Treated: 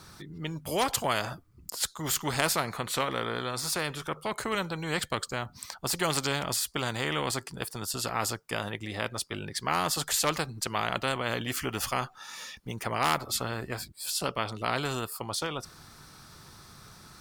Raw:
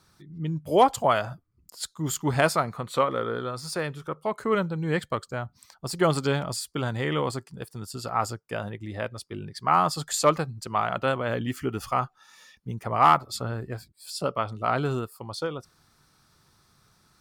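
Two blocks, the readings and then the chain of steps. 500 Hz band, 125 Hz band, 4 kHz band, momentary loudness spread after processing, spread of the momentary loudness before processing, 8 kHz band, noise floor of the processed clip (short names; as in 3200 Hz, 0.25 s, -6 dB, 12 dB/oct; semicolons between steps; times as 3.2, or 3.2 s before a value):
-6.5 dB, -6.0 dB, +4.0 dB, 13 LU, 15 LU, +4.0 dB, -55 dBFS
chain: spectral compressor 2:1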